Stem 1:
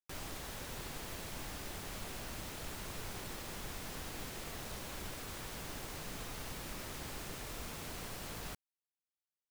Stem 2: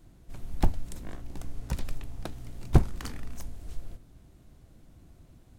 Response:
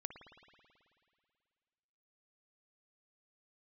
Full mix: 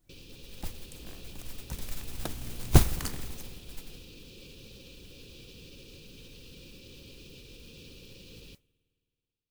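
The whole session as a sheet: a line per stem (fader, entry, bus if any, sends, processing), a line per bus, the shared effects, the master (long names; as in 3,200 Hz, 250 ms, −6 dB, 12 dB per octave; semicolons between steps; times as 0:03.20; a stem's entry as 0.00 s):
0.0 dB, 0.00 s, send −13 dB, brick-wall band-stop 560–2,300 Hz; low-pass filter 4,600 Hz 24 dB per octave; brickwall limiter −43 dBFS, peak gain reduction 10 dB
0:00.79 −18.5 dB → 0:01.01 −10.5 dB → 0:01.83 −10.5 dB → 0:02.25 −2 dB → 0:03.05 −2 dB → 0:03.45 −12 dB, 0.00 s, send −3.5 dB, no processing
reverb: on, RT60 2.3 s, pre-delay 54 ms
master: high-shelf EQ 6,800 Hz +11.5 dB; noise that follows the level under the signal 13 dB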